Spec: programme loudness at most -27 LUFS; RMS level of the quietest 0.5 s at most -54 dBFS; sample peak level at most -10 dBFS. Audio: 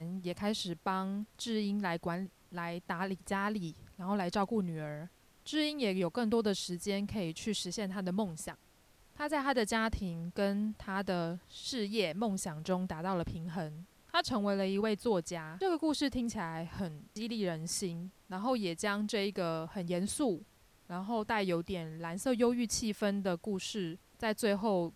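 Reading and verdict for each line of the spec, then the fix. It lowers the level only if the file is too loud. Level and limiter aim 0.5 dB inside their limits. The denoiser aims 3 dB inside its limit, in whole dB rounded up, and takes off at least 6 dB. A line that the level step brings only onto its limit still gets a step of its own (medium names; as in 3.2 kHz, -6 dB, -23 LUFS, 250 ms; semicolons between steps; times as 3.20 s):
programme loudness -35.5 LUFS: pass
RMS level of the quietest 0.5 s -64 dBFS: pass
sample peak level -16.5 dBFS: pass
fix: none needed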